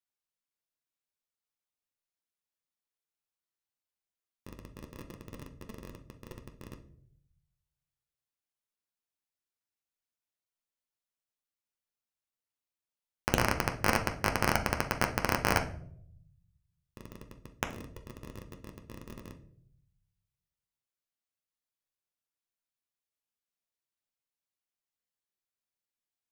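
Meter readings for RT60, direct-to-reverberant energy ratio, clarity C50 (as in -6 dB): no single decay rate, 4.0 dB, 11.5 dB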